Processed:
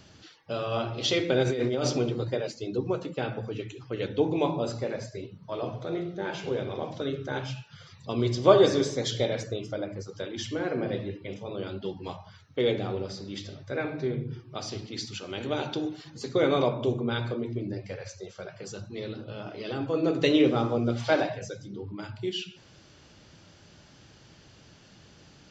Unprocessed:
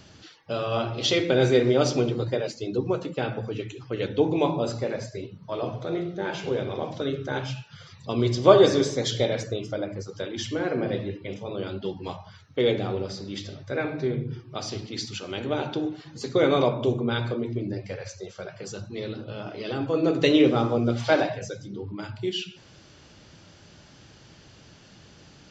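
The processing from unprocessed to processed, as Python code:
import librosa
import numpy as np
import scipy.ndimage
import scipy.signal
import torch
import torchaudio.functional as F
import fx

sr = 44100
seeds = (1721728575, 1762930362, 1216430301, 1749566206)

y = fx.over_compress(x, sr, threshold_db=-23.0, ratio=-1.0, at=(1.42, 1.99), fade=0.02)
y = fx.high_shelf(y, sr, hz=4200.0, db=10.5, at=(15.4, 16.1))
y = F.gain(torch.from_numpy(y), -3.0).numpy()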